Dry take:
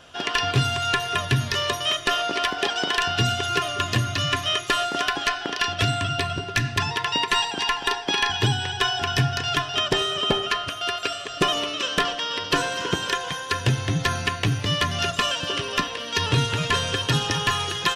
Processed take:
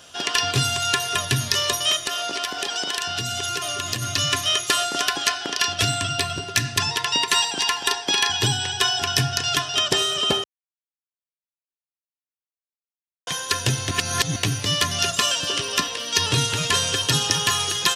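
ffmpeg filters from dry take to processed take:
-filter_complex "[0:a]asplit=3[s0][s1][s2];[s0]afade=t=out:st=2:d=0.02[s3];[s1]acompressor=threshold=0.0631:ratio=6:attack=3.2:release=140:knee=1:detection=peak,afade=t=in:st=2:d=0.02,afade=t=out:st=4.01:d=0.02[s4];[s2]afade=t=in:st=4.01:d=0.02[s5];[s3][s4][s5]amix=inputs=3:normalize=0,asplit=5[s6][s7][s8][s9][s10];[s6]atrim=end=10.44,asetpts=PTS-STARTPTS,afade=t=out:st=10.436:d=0.004:c=hsin[s11];[s7]atrim=start=10.44:end=13.27,asetpts=PTS-STARTPTS,volume=0[s12];[s8]atrim=start=13.27:end=13.912,asetpts=PTS-STARTPTS,afade=t=in:d=0.004:c=hsin[s13];[s9]atrim=start=13.908:end=14.362,asetpts=PTS-STARTPTS,areverse[s14];[s10]atrim=start=14.358[s15];[s11][s12][s13]concat=n=3:v=0:a=1[s16];[s16][s14]acrossfade=d=0.004:c1=hsin:c2=hsin[s17];[s17][s15]acrossfade=d=0.004:c1=hsin:c2=hsin,highpass=57,bass=f=250:g=-1,treble=f=4000:g=13,volume=0.891"

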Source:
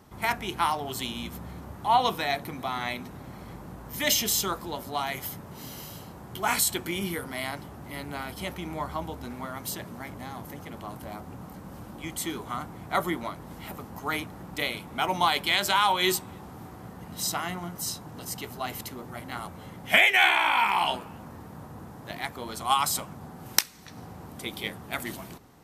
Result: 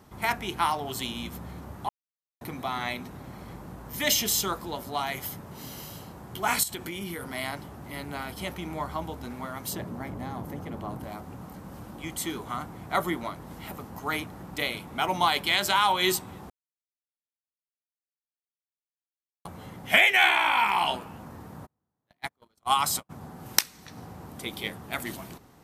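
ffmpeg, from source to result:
-filter_complex "[0:a]asettb=1/sr,asplit=3[s0][s1][s2];[s0]atrim=end=6.634[s3];[s1]atrim=start=6.63:end=7.21,asetpts=PTS-STARTPTS,afade=t=in:d=0.004:c=qsin,afade=t=out:st=0.576:d=0.004:c=qsin,acompressor=threshold=0.0282:ratio=6:attack=3.2:release=140:knee=1:detection=peak[s4];[s2]atrim=start=7.206[s5];[s3][s4]acrossfade=d=0.004:c1=hsin:c2=qsin[s6];[s6][s5]acrossfade=d=0.004:c1=qsin:c2=hsin,asettb=1/sr,asplit=3[s7][s8][s9];[s7]atrim=end=9.734[s10];[s8]atrim=start=9.73:end=11.04,asetpts=PTS-STARTPTS,afade=t=in:d=0.004:c=qsin,afade=t=out:st=1.306:d=0.004:c=qsin,tiltshelf=f=1300:g=5[s11];[s9]atrim=start=11.036[s12];[s10][s11]acrossfade=d=0.004:c1=hsin:c2=qsin[s13];[s13][s12]acrossfade=d=0.004:c1=qsin:c2=hsin,asplit=3[s14][s15][s16];[s14]afade=t=out:st=21.65:d=0.02[s17];[s15]agate=range=0.01:threshold=0.0224:ratio=16:release=100:detection=peak,afade=t=in:st=21.65:d=0.02,afade=t=out:st=23.09:d=0.02[s18];[s16]afade=t=in:st=23.09:d=0.02[s19];[s17][s18][s19]amix=inputs=3:normalize=0,asplit=5[s20][s21][s22][s23][s24];[s20]atrim=end=1.89,asetpts=PTS-STARTPTS,afade=t=out:st=1.886:d=0.004:c=hsin[s25];[s21]atrim=start=1.89:end=2.41,asetpts=PTS-STARTPTS,volume=0[s26];[s22]atrim=start=2.41:end=16.5,asetpts=PTS-STARTPTS,afade=t=in:d=0.004:c=hsin,afade=t=out:st=14.086:d=0.004:c=hsin[s27];[s23]atrim=start=16.5:end=19.45,asetpts=PTS-STARTPTS,volume=0[s28];[s24]atrim=start=19.45,asetpts=PTS-STARTPTS,afade=t=in:d=0.004:c=hsin[s29];[s25][s26][s27][s28][s29]concat=n=5:v=0:a=1"

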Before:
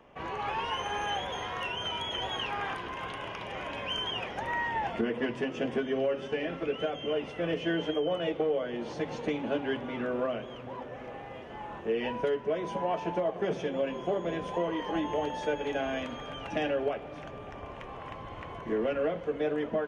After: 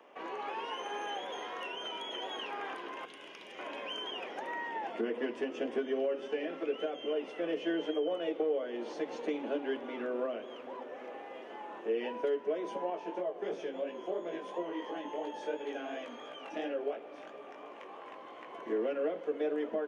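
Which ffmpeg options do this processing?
-filter_complex "[0:a]asettb=1/sr,asplit=3[s0][s1][s2];[s0]atrim=end=3.054[s3];[s1]atrim=start=3.05:end=3.59,asetpts=PTS-STARTPTS,afade=t=in:d=0.004:c=qsin,afade=t=out:st=0.536:d=0.004:c=qsin,equalizer=f=870:t=o:w=2.5:g=-13.5[s4];[s2]atrim=start=3.586[s5];[s3][s4]acrossfade=d=0.004:c1=hsin:c2=qsin[s6];[s6][s5]acrossfade=d=0.004:c1=qsin:c2=hsin,asettb=1/sr,asplit=3[s7][s8][s9];[s7]atrim=end=12.904[s10];[s8]atrim=start=12.9:end=18.54,asetpts=PTS-STARTPTS,afade=t=in:d=0.004:c=qsin,afade=t=out:st=5.636:d=0.004:c=qsin,flanger=delay=16.5:depth=5.1:speed=2.9[s11];[s9]atrim=start=18.536[s12];[s10][s11]acrossfade=d=0.004:c1=hsin:c2=qsin[s13];[s13][s12]acrossfade=d=0.004:c1=qsin:c2=hsin,highpass=f=290:w=0.5412,highpass=f=290:w=1.3066,acrossover=split=490[s14][s15];[s15]acompressor=threshold=0.00282:ratio=1.5[s16];[s14][s16]amix=inputs=2:normalize=0"

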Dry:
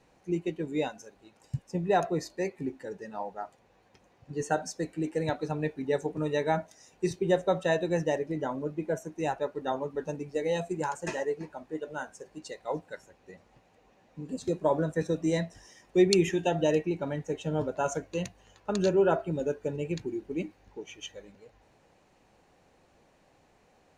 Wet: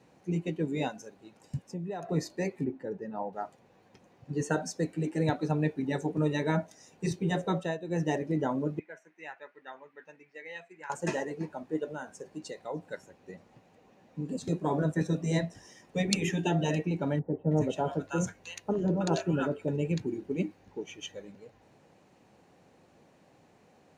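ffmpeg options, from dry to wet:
-filter_complex "[0:a]asettb=1/sr,asplit=3[s0][s1][s2];[s0]atrim=end=1.614[s3];[s1]atrim=start=1.61:end=2.09,asetpts=PTS-STARTPTS,afade=t=in:d=0.004:c=qsin,afade=t=out:st=0.476:d=0.004:c=qsin,acompressor=threshold=0.00631:ratio=2.5:attack=3.2:release=140:knee=1:detection=peak[s4];[s2]atrim=start=2.086[s5];[s3][s4]acrossfade=d=0.004:c1=hsin:c2=qsin[s6];[s6][s5]acrossfade=d=0.004:c1=qsin:c2=hsin,asettb=1/sr,asplit=3[s7][s8][s9];[s7]atrim=end=2.644[s10];[s8]atrim=start=2.64:end=3.33,asetpts=PTS-STARTPTS,afade=t=in:d=0.004:c=qsin,afade=t=out:st=0.686:d=0.004:c=qsin,lowpass=f=1200:p=1[s11];[s9]atrim=start=3.326[s12];[s10][s11]acrossfade=d=0.004:c1=hsin:c2=qsin[s13];[s13][s12]acrossfade=d=0.004:c1=qsin:c2=hsin,asettb=1/sr,asplit=3[s14][s15][s16];[s14]atrim=end=8.794[s17];[s15]atrim=start=8.79:end=10.9,asetpts=PTS-STARTPTS,afade=t=in:d=0.004:c=qsin,afade=t=out:st=2.106:d=0.004:c=qsin,bandpass=f=2000:t=q:w=3[s18];[s16]atrim=start=10.896[s19];[s17][s18]acrossfade=d=0.004:c1=hsin:c2=qsin[s20];[s20][s19]acrossfade=d=0.004:c1=qsin:c2=hsin,asettb=1/sr,asplit=3[s21][s22][s23];[s21]atrim=end=11.914[s24];[s22]atrim=start=11.91:end=12.91,asetpts=PTS-STARTPTS,afade=t=in:d=0.004:c=qsin,afade=t=out:st=0.996:d=0.004:c=qsin,acompressor=threshold=0.0112:ratio=2:attack=3.2:release=140:knee=1:detection=peak[s25];[s23]atrim=start=12.906[s26];[s24][s25]acrossfade=d=0.004:c1=hsin:c2=qsin[s27];[s27][s26]acrossfade=d=0.004:c1=qsin:c2=hsin,asettb=1/sr,asplit=3[s28][s29][s30];[s28]atrim=end=17.194[s31];[s29]atrim=start=17.19:end=19.68,asetpts=PTS-STARTPTS,afade=t=in:d=0.004:c=qsin,afade=t=out:st=2.486:d=0.004:c=qsin,acrossover=split=1100[s32][s33];[s33]adelay=320[s34];[s32][s34]amix=inputs=2:normalize=0,atrim=end_sample=109809[s35];[s30]atrim=start=19.676[s36];[s31][s35]acrossfade=d=0.004:c1=hsin:c2=qsin[s37];[s37][s36]acrossfade=d=0.004:c1=qsin:c2=hsin,asplit=3[s38][s39][s40];[s38]atrim=end=7.77,asetpts=PTS-STARTPTS,afade=t=out:st=7.51:d=0.26:silence=0.211349[s41];[s39]atrim=start=7.77:end=7.84,asetpts=PTS-STARTPTS,volume=0.211[s42];[s40]atrim=start=7.84,asetpts=PTS-STARTPTS,afade=t=in:d=0.26:silence=0.211349[s43];[s41][s42][s43]concat=n=3:v=0:a=1,highpass=140,afftfilt=real='re*lt(hypot(re,im),0.316)':imag='im*lt(hypot(re,im),0.316)':win_size=1024:overlap=0.75,lowshelf=f=280:g=10"

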